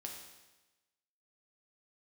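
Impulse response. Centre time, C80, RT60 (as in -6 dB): 42 ms, 6.0 dB, 1.1 s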